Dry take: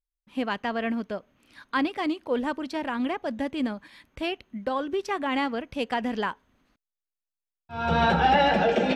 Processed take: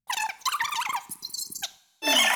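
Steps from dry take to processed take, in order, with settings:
change of speed 3.81×
time-frequency box erased 0:01.09–0:01.63, 420–4,000 Hz
coupled-rooms reverb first 0.42 s, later 1.9 s, from −18 dB, DRR 13.5 dB

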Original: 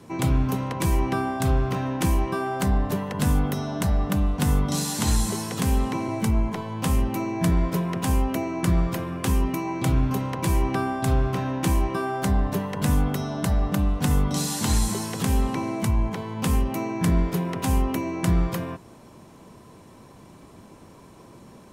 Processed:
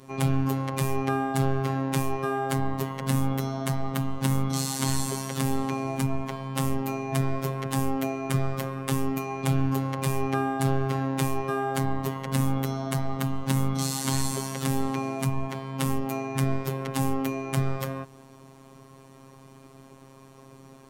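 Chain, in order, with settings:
phases set to zero 129 Hz
speed change +4%

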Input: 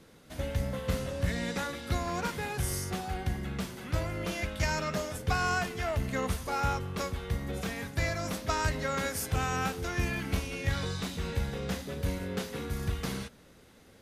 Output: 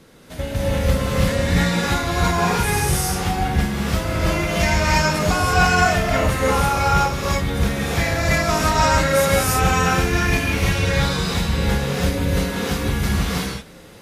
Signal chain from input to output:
reverb whose tail is shaped and stops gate 360 ms rising, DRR −6.5 dB
level +7 dB

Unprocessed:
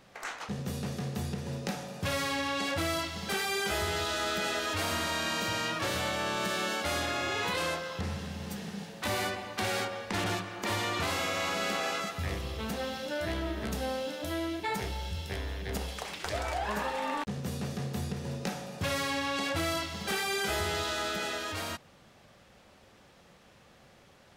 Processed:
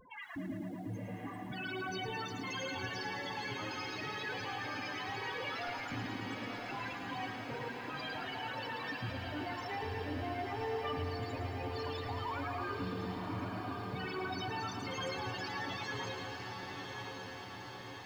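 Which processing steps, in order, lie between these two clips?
reverb reduction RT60 1.7 s
in parallel at −3 dB: downward compressor, threshold −44 dBFS, peak gain reduction 14.5 dB
on the sum: flanger 0.69 Hz, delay 2.5 ms, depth 2.2 ms, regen +34%
hard clipping −40 dBFS, distortion −7 dB
spectral peaks only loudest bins 8
feedback delay with all-pass diffusion 1,413 ms, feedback 69%, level −5 dB
on a send at −18 dB: convolution reverb RT60 0.85 s, pre-delay 13 ms
on the sum: wrong playback speed 33 rpm record played at 45 rpm
feedback echo at a low word length 110 ms, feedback 80%, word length 11 bits, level −8.5 dB
level +3 dB

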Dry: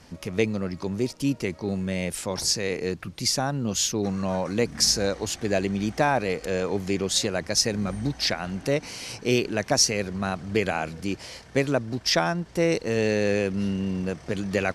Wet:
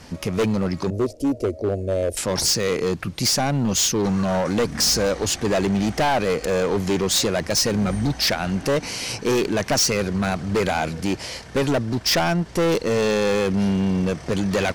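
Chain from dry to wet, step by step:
0:00.90–0:02.17: drawn EQ curve 110 Hz 0 dB, 160 Hz −23 dB, 230 Hz −5 dB, 660 Hz +6 dB, 950 Hz −26 dB, 9,100 Hz −10 dB
hard clipping −24.5 dBFS, distortion −7 dB
level +8 dB

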